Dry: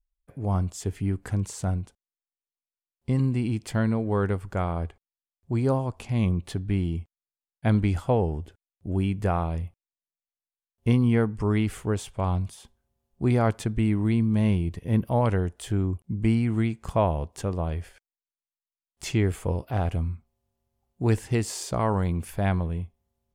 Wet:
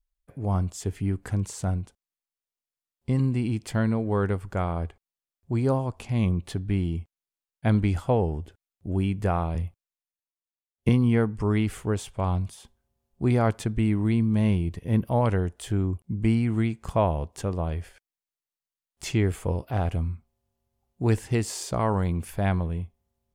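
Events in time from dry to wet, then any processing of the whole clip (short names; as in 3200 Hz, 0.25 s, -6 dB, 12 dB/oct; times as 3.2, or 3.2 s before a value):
9.55–10.89 three-band expander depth 40%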